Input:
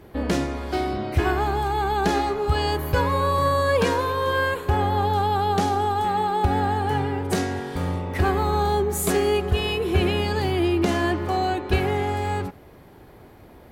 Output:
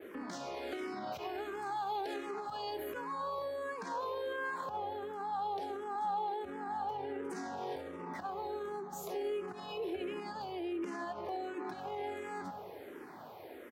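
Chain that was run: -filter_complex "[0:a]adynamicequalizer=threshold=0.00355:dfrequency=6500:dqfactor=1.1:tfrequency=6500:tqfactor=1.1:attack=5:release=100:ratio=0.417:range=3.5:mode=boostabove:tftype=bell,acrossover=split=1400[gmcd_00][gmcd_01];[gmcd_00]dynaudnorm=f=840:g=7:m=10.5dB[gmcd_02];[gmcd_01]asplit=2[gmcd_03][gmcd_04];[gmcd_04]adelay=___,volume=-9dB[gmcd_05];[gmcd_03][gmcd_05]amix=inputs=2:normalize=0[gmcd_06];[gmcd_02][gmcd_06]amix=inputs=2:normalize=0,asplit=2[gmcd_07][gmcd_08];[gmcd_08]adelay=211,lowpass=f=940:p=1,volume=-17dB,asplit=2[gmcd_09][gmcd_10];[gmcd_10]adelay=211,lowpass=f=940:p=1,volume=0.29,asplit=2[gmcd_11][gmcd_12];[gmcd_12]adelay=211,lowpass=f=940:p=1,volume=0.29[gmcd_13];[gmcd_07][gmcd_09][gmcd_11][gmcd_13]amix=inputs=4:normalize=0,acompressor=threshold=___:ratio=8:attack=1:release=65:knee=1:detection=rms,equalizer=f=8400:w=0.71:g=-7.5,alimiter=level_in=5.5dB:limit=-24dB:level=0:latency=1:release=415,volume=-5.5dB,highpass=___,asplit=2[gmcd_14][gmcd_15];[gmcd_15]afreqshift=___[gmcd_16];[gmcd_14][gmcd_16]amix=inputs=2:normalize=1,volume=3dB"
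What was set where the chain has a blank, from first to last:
17, -27dB, 330, -1.4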